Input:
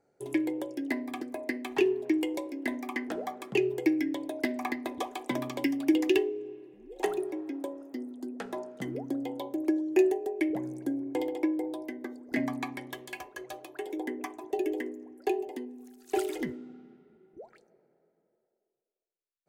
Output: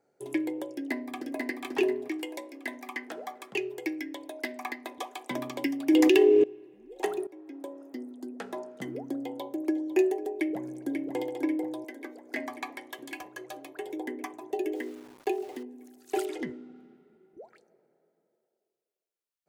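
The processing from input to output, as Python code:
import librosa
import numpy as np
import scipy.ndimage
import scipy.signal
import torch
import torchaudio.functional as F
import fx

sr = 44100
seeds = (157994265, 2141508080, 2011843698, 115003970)

y = fx.echo_throw(x, sr, start_s=0.74, length_s=0.73, ms=490, feedback_pct=40, wet_db=-2.5)
y = fx.low_shelf(y, sr, hz=410.0, db=-11.0, at=(2.08, 5.31))
y = fx.env_flatten(y, sr, amount_pct=100, at=(5.89, 6.44))
y = fx.echo_throw(y, sr, start_s=9.21, length_s=0.66, ms=500, feedback_pct=60, wet_db=-16.5)
y = fx.echo_throw(y, sr, start_s=10.38, length_s=0.64, ms=540, feedback_pct=70, wet_db=-6.5)
y = fx.highpass(y, sr, hz=400.0, slope=12, at=(11.84, 12.99))
y = fx.sample_gate(y, sr, floor_db=-48.0, at=(14.75, 15.63))
y = fx.air_absorb(y, sr, metres=50.0, at=(16.25, 16.76))
y = fx.edit(y, sr, fx.fade_in_from(start_s=7.27, length_s=0.6, floor_db=-16.0), tone=tone)
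y = fx.low_shelf(y, sr, hz=100.0, db=-11.5)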